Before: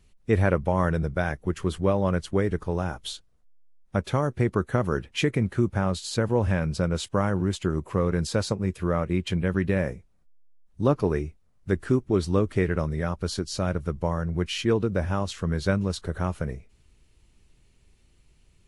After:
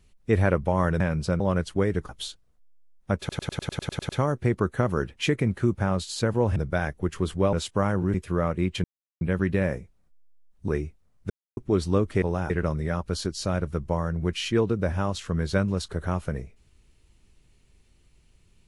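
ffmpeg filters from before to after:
ffmpeg -i in.wav -filter_complex "[0:a]asplit=22[link_01][link_02][link_03][link_04][link_05][link_06][link_07][link_08][link_09][link_10][link_11][link_12][link_13][link_14][link_15][link_16][link_17][link_18][link_19][link_20][link_21][link_22];[link_01]atrim=end=1.002[link_23];[link_02]atrim=start=6.508:end=6.912[link_24];[link_03]atrim=start=1.968:end=2.662[link_25];[link_04]atrim=start=2.938:end=4.142[link_26];[link_05]atrim=start=4.038:end=4.142[link_27];[link_06]atrim=start=4.038:end=4.142[link_28];[link_07]atrim=start=4.038:end=4.142[link_29];[link_08]atrim=start=4.038:end=4.142[link_30];[link_09]atrim=start=4.038:end=4.142[link_31];[link_10]atrim=start=4.038:end=4.142[link_32];[link_11]atrim=start=4.038:end=4.142[link_33];[link_12]atrim=start=4.038:end=4.142[link_34];[link_13]atrim=start=4.038:end=6.512[link_35];[link_14]atrim=start=0.998:end=1.972[link_36];[link_15]atrim=start=6.908:end=7.522[link_37];[link_16]atrim=start=8.658:end=9.36,asetpts=PTS-STARTPTS,afade=type=out:start_time=0.698:duration=0.004:curve=hsin,apad=pad_dur=0.37[link_38];[link_17]atrim=start=9.36:end=10.832,asetpts=PTS-STARTPTS,afade=type=in:duration=0.004:curve=hsin[link_39];[link_18]atrim=start=11.088:end=11.71,asetpts=PTS-STARTPTS,afade=type=out:start_time=0.618:duration=0.004:curve=hsin[link_40];[link_19]atrim=start=11.71:end=11.98,asetpts=PTS-STARTPTS,volume=0[link_41];[link_20]atrim=start=11.98:end=12.632,asetpts=PTS-STARTPTS,afade=type=in:duration=0.004:curve=hsin[link_42];[link_21]atrim=start=2.658:end=2.942[link_43];[link_22]atrim=start=12.628[link_44];[link_23][link_24]acrossfade=duration=0.004:curve1=hsin:curve2=hsin[link_45];[link_45][link_25]acrossfade=duration=0.004:curve1=hsin:curve2=hsin[link_46];[link_46][link_26]acrossfade=duration=0.004:curve1=hsin:curve2=hsin[link_47];[link_47][link_27]acrossfade=duration=0.004:curve1=hsin:curve2=hsin[link_48];[link_48][link_28]acrossfade=duration=0.004:curve1=hsin:curve2=hsin[link_49];[link_49][link_29]acrossfade=duration=0.004:curve1=hsin:curve2=hsin[link_50];[link_50][link_30]acrossfade=duration=0.004:curve1=hsin:curve2=hsin[link_51];[link_51][link_31]acrossfade=duration=0.004:curve1=hsin:curve2=hsin[link_52];[link_52][link_32]acrossfade=duration=0.004:curve1=hsin:curve2=hsin[link_53];[link_53][link_33]acrossfade=duration=0.004:curve1=hsin:curve2=hsin[link_54];[link_54][link_34]acrossfade=duration=0.004:curve1=hsin:curve2=hsin[link_55];[link_55][link_35]acrossfade=duration=0.004:curve1=hsin:curve2=hsin[link_56];[link_56][link_36]acrossfade=duration=0.004:curve1=hsin:curve2=hsin[link_57];[link_57][link_37]acrossfade=duration=0.004:curve1=hsin:curve2=hsin[link_58];[link_38][link_39]concat=n=2:v=0:a=1[link_59];[link_58][link_59]acrossfade=duration=0.004:curve1=hsin:curve2=hsin[link_60];[link_40][link_41][link_42]concat=n=3:v=0:a=1[link_61];[link_60][link_61]acrossfade=duration=0.004:curve1=hsin:curve2=hsin[link_62];[link_62][link_43]acrossfade=duration=0.004:curve1=hsin:curve2=hsin[link_63];[link_63][link_44]acrossfade=duration=0.004:curve1=hsin:curve2=hsin" out.wav

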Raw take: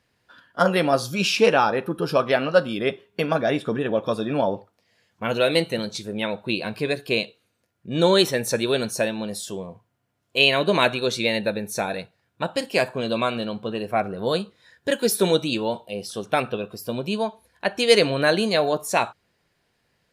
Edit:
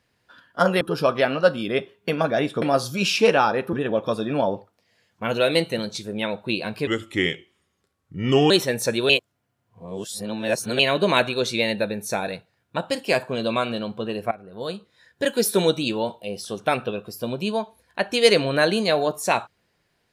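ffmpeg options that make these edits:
ffmpeg -i in.wav -filter_complex "[0:a]asplit=9[link_01][link_02][link_03][link_04][link_05][link_06][link_07][link_08][link_09];[link_01]atrim=end=0.812[link_10];[link_02]atrim=start=1.918:end=3.732[link_11];[link_03]atrim=start=0.808:end=1.922[link_12];[link_04]atrim=start=3.728:end=6.874[link_13];[link_05]atrim=start=6.87:end=8.16,asetpts=PTS-STARTPTS,asetrate=34839,aresample=44100,atrim=end_sample=72011,asetpts=PTS-STARTPTS[link_14];[link_06]atrim=start=8.156:end=8.752[link_15];[link_07]atrim=start=8.748:end=10.452,asetpts=PTS-STARTPTS,areverse[link_16];[link_08]atrim=start=10.448:end=13.97,asetpts=PTS-STARTPTS,afade=type=out:start_time=3.518:duration=0.004:curve=hsin:silence=0.1[link_17];[link_09]atrim=start=13.97,asetpts=PTS-STARTPTS,afade=type=in:duration=0.94:silence=0.1[link_18];[link_10][link_11]acrossfade=duration=0.004:curve1=hsin:curve2=hsin[link_19];[link_19][link_12]acrossfade=duration=0.004:curve1=hsin:curve2=hsin[link_20];[link_20][link_13]acrossfade=duration=0.004:curve1=hsin:curve2=hsin[link_21];[link_21][link_14]acrossfade=duration=0.004:curve1=hsin:curve2=hsin[link_22];[link_22][link_15]acrossfade=duration=0.004:curve1=hsin:curve2=hsin[link_23];[link_23][link_16]acrossfade=duration=0.004:curve1=hsin:curve2=hsin[link_24];[link_17][link_18]concat=n=2:v=0:a=1[link_25];[link_24][link_25]acrossfade=duration=0.004:curve1=hsin:curve2=hsin" out.wav

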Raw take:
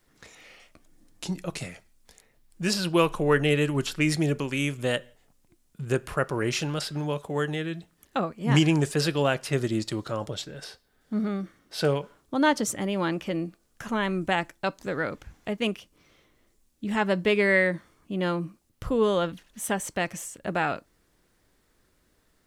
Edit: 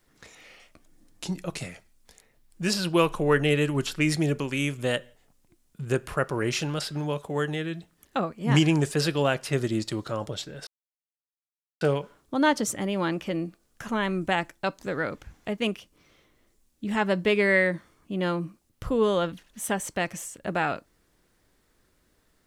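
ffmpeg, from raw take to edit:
ffmpeg -i in.wav -filter_complex "[0:a]asplit=3[link_01][link_02][link_03];[link_01]atrim=end=10.67,asetpts=PTS-STARTPTS,afade=type=out:start_time=10.666:duration=0.004:curve=hsin[link_04];[link_02]atrim=start=10.67:end=11.81,asetpts=PTS-STARTPTS,volume=0[link_05];[link_03]atrim=start=11.81,asetpts=PTS-STARTPTS,afade=type=in:duration=0.004:curve=hsin[link_06];[link_04][link_05][link_06]concat=n=3:v=0:a=1" out.wav

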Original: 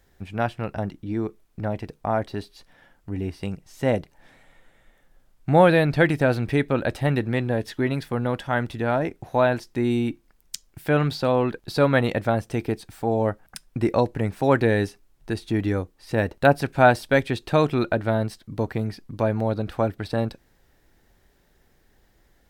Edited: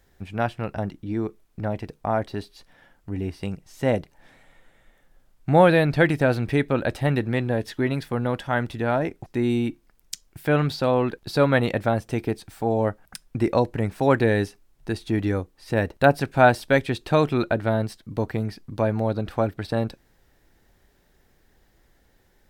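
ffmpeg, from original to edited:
ffmpeg -i in.wav -filter_complex "[0:a]asplit=2[link_01][link_02];[link_01]atrim=end=9.262[link_03];[link_02]atrim=start=9.668[link_04];[link_03][link_04]acrossfade=duration=0.004:curve1=hsin:curve2=hsin" out.wav

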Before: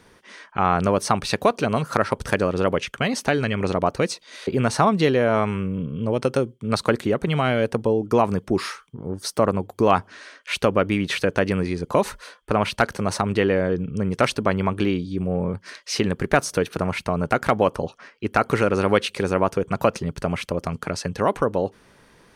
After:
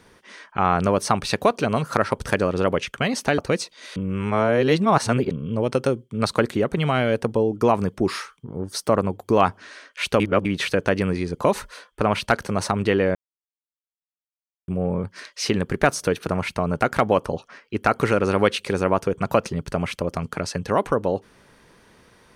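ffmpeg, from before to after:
ffmpeg -i in.wav -filter_complex "[0:a]asplit=8[link_01][link_02][link_03][link_04][link_05][link_06][link_07][link_08];[link_01]atrim=end=3.382[link_09];[link_02]atrim=start=3.878:end=4.462[link_10];[link_03]atrim=start=4.458:end=5.812,asetpts=PTS-STARTPTS,areverse[link_11];[link_04]atrim=start=5.808:end=10.702[link_12];[link_05]atrim=start=10.698:end=10.952,asetpts=PTS-STARTPTS,areverse[link_13];[link_06]atrim=start=10.948:end=13.65,asetpts=PTS-STARTPTS,afade=type=out:start_time=2.698:duration=0.004:curve=hsin[link_14];[link_07]atrim=start=13.65:end=15.18,asetpts=PTS-STARTPTS,volume=0[link_15];[link_08]atrim=start=15.18,asetpts=PTS-STARTPTS,afade=type=in:duration=0.004:curve=hsin[link_16];[link_09][link_10]acrossfade=duration=0.004:curve1=hsin:curve2=hsin[link_17];[link_17][link_11]acrossfade=duration=0.004:curve1=hsin:curve2=hsin[link_18];[link_18][link_12]acrossfade=duration=0.004:curve1=hsin:curve2=hsin[link_19];[link_19][link_13]acrossfade=duration=0.004:curve1=hsin:curve2=hsin[link_20];[link_14][link_15][link_16]concat=n=3:v=0:a=1[link_21];[link_20][link_21]acrossfade=duration=0.004:curve1=hsin:curve2=hsin" out.wav

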